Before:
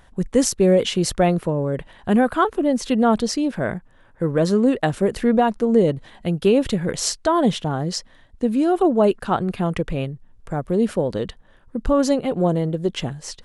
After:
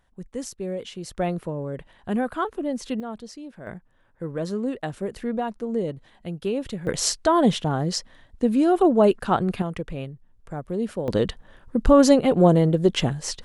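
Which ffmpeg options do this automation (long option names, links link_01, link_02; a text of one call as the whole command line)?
ffmpeg -i in.wav -af "asetnsamples=nb_out_samples=441:pad=0,asendcmd='1.17 volume volume -8dB;3 volume volume -17.5dB;3.67 volume volume -10dB;6.87 volume volume -0.5dB;9.62 volume volume -7.5dB;11.08 volume volume 3.5dB',volume=-15dB" out.wav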